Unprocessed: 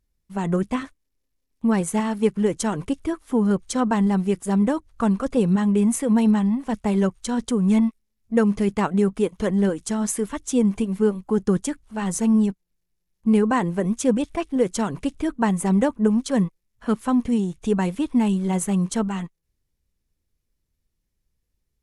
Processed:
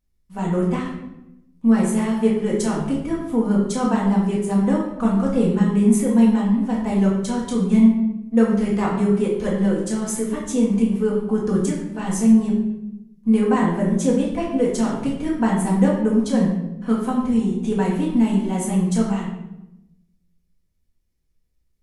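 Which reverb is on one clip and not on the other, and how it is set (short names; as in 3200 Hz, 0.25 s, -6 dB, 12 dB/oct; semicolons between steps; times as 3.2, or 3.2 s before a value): shoebox room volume 290 m³, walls mixed, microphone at 1.9 m; gain -5 dB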